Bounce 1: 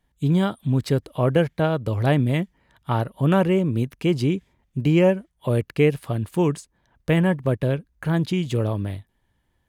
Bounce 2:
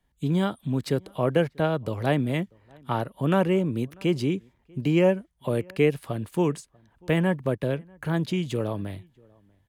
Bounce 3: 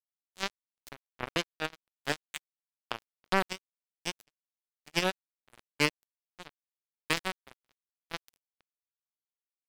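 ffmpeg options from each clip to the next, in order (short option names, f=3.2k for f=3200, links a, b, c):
-filter_complex "[0:a]acrossover=split=150|760|1700[a][b][c][d];[a]acompressor=threshold=-35dB:ratio=6[e];[e][b][c][d]amix=inputs=4:normalize=0,asplit=2[f][g];[g]adelay=641.4,volume=-28dB,highshelf=f=4k:g=-14.4[h];[f][h]amix=inputs=2:normalize=0,volume=-2.5dB"
-af "tiltshelf=f=1.3k:g=-7,acrusher=bits=2:mix=0:aa=0.5"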